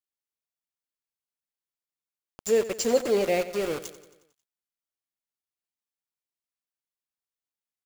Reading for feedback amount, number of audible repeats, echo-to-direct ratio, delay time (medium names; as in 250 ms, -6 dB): 57%, 5, -13.5 dB, 90 ms